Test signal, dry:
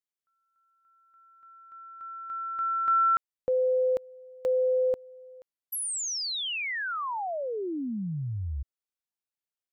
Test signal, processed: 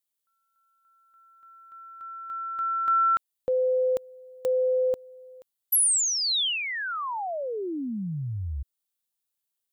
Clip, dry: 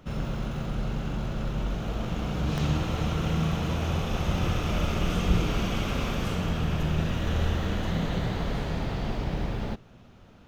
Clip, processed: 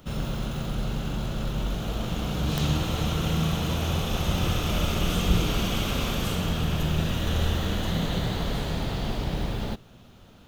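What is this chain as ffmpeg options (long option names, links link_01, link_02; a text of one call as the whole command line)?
ffmpeg -i in.wav -af "aexciter=amount=2.7:drive=1.4:freq=3100,volume=1dB" out.wav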